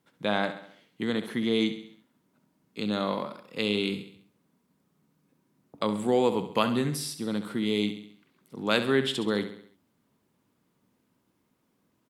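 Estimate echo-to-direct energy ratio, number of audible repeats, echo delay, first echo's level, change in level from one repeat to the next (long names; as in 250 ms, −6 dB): −9.5 dB, 4, 67 ms, −11.0 dB, −6.0 dB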